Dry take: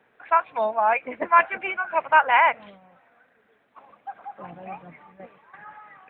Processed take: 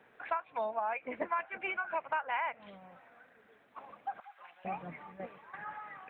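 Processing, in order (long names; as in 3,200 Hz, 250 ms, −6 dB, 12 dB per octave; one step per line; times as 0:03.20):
0:04.20–0:04.65: Bessel high-pass filter 2,400 Hz, order 2
downward compressor 5 to 1, threshold −33 dBFS, peak gain reduction 19.5 dB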